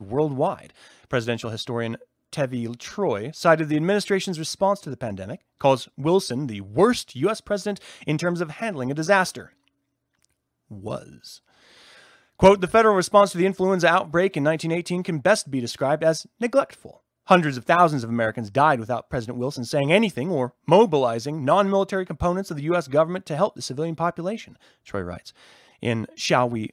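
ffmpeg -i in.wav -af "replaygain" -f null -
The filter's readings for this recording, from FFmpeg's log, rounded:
track_gain = +1.1 dB
track_peak = 0.576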